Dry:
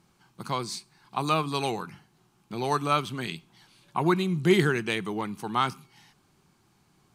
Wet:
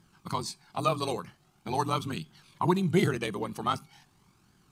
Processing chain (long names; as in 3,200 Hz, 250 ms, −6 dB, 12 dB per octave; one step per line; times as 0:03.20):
dynamic equaliser 2,000 Hz, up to −8 dB, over −42 dBFS, Q 0.76
flanger 0.29 Hz, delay 0.6 ms, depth 1.3 ms, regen +44%
time stretch by overlap-add 0.66×, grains 44 ms
level +5.5 dB